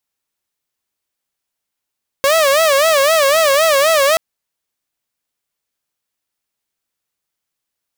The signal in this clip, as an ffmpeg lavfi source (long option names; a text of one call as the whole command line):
ffmpeg -f lavfi -i "aevalsrc='0.422*(2*mod((599.5*t-56.5/(2*PI*3.9)*sin(2*PI*3.9*t)),1)-1)':duration=1.93:sample_rate=44100" out.wav